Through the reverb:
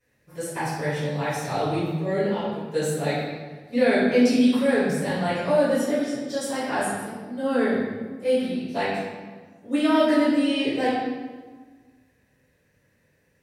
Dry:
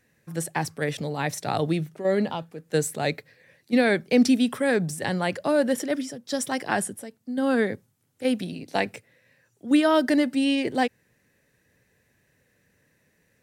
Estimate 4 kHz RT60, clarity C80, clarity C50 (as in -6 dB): 1.0 s, 1.5 dB, -0.5 dB